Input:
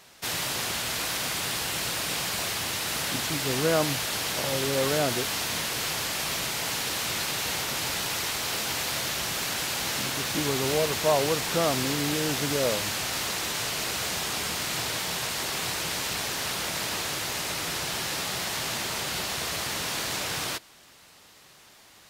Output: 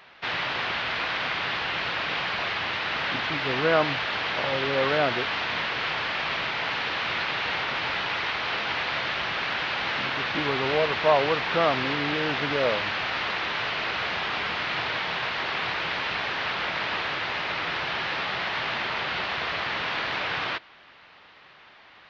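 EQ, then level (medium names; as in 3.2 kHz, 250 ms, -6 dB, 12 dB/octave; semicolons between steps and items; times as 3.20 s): Gaussian low-pass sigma 3.1 samples; tilt shelf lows -5.5 dB, about 850 Hz; bass shelf 450 Hz -4 dB; +6.0 dB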